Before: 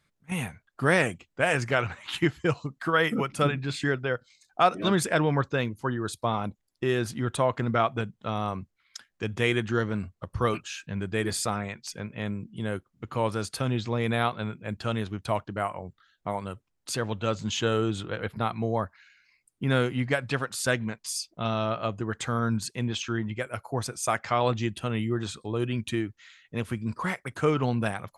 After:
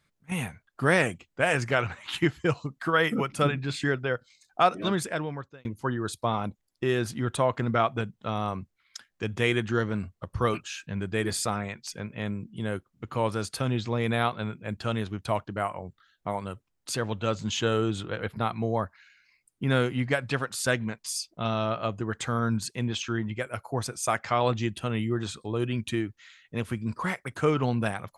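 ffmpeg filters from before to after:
-filter_complex "[0:a]asplit=2[a][b];[a]atrim=end=5.65,asetpts=PTS-STARTPTS,afade=t=out:st=4.61:d=1.04[c];[b]atrim=start=5.65,asetpts=PTS-STARTPTS,afade=t=in:d=0.004:c=hsin[d];[c][d]concat=n=2:v=0:a=1"

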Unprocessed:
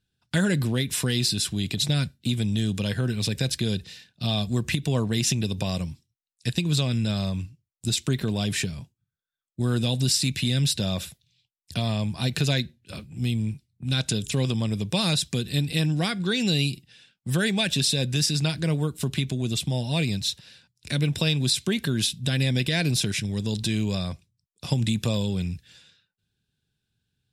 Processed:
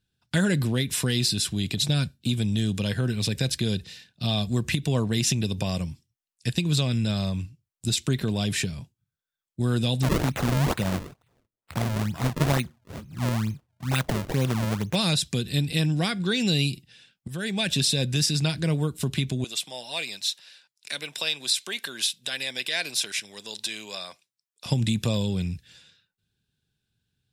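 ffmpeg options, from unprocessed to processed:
-filter_complex "[0:a]asettb=1/sr,asplit=3[a][b][c];[a]atrim=end=1.854[d];[b]atrim=start=1.85:end=2.41,asetpts=PTS-STARTPTS,afade=t=in:d=0.004:c=qsin,afade=t=out:st=0.556:d=0.004:c=qsin,bandreject=f=2k:w=9[e];[c]atrim=start=2.406[f];[d][e]acrossfade=d=0.004:c1=hsin:c2=qsin[g];[g][f]acrossfade=d=0.004:c1=qsin:c2=hsin,asettb=1/sr,asplit=3[h][i][j];[h]atrim=end=5.584[k];[i]atrim=start=5.58:end=6.56,asetpts=PTS-STARTPTS,afade=t=in:d=0.004:c=qsin,afade=t=out:st=0.976:d=0.004:c=qsin,bandreject=f=3.9k:w=12[l];[j]atrim=start=6.556[m];[k][l]acrossfade=d=0.004:c1=hsin:c2=qsin[n];[n][m]acrossfade=d=0.004:c1=qsin:c2=hsin,asplit=3[o][p][q];[o]afade=t=out:st=10.02:d=0.02[r];[p]acrusher=samples=33:mix=1:aa=0.000001:lfo=1:lforange=52.8:lforate=2.2,afade=t=in:st=10.02:d=0.02,afade=t=out:st=14.94:d=0.02[s];[q]afade=t=in:st=14.94:d=0.02[t];[r][s][t]amix=inputs=3:normalize=0,asettb=1/sr,asplit=3[u][v][w];[u]atrim=end=19.444[x];[v]atrim=start=19.44:end=24.66,asetpts=PTS-STARTPTS,afade=t=in:d=0.004:c=qsin,afade=t=out:st=5.216:d=0.004:c=qsin,highpass=710[y];[w]atrim=start=24.656[z];[x][y]acrossfade=d=0.004:c1=hsin:c2=qsin[aa];[aa][z]acrossfade=d=0.004:c1=qsin:c2=hsin,asplit=2[ab][ac];[ab]atrim=end=17.28,asetpts=PTS-STARTPTS,afade=t=out:st=17.276:d=0.004:c=hsin:silence=0.177828[ad];[ac]atrim=start=17.28,asetpts=PTS-STARTPTS,afade=t=in:d=0.44:silence=0.177828[ae];[ad][ae]concat=n=2:v=0:a=1"

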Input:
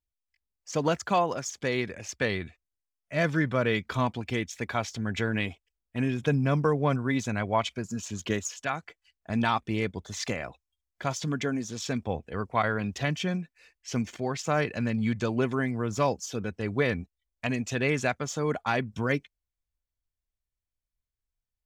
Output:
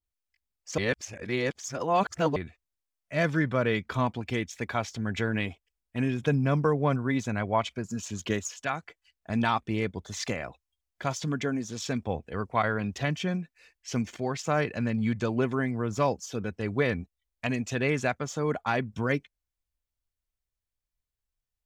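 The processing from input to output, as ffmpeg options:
-filter_complex "[0:a]asplit=3[a][b][c];[a]atrim=end=0.782[d];[b]atrim=start=0.778:end=2.362,asetpts=PTS-STARTPTS,areverse[e];[c]atrim=start=2.358[f];[d][e]acrossfade=d=0.004:c1=hsin:c2=hsin[g];[g][f]acrossfade=d=0.004:c1=hsin:c2=hsin,adynamicequalizer=threshold=0.00708:dfrequency=2200:dqfactor=0.7:tfrequency=2200:tqfactor=0.7:attack=5:release=100:ratio=0.375:range=2:mode=cutabove:tftype=highshelf"

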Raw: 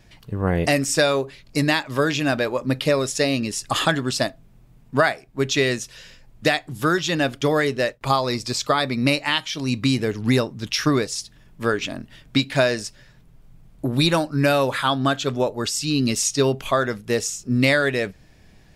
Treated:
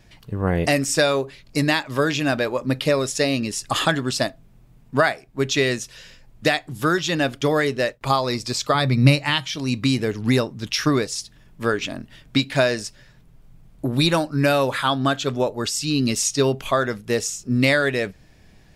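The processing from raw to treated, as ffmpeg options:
-filter_complex "[0:a]asettb=1/sr,asplit=3[a][b][c];[a]atrim=end=8.744[d];[b]atrim=start=8.74:end=9.56,asetpts=PTS-STARTPTS,afade=t=in:d=0.004:c=qsin,afade=t=out:st=0.816:d=0.004:c=qsin,equalizer=f=130:t=o:w=0.77:g=12.5[e];[c]atrim=start=9.556[f];[d][e]acrossfade=d=0.004:c1=hsin:c2=qsin[g];[g][f]acrossfade=d=0.004:c1=qsin:c2=hsin"

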